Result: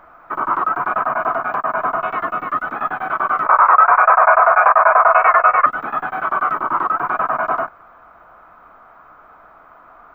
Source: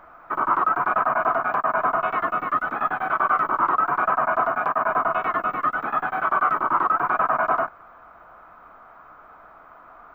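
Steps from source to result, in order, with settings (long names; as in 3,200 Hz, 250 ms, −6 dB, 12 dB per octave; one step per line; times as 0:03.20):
0:03.46–0:05.66: drawn EQ curve 120 Hz 0 dB, 230 Hz −27 dB, 520 Hz +11 dB, 2,500 Hz +12 dB, 4,200 Hz −29 dB
boost into a limiter +3 dB
level −1 dB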